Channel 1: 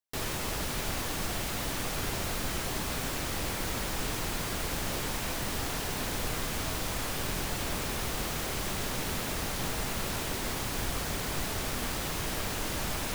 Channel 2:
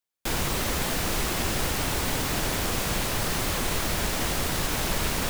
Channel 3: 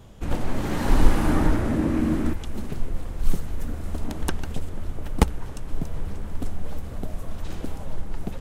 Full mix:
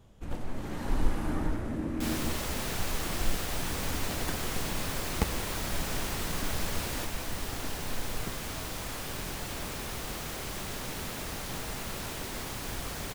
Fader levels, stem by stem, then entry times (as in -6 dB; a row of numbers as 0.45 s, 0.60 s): -4.0 dB, -10.0 dB, -10.5 dB; 1.90 s, 1.75 s, 0.00 s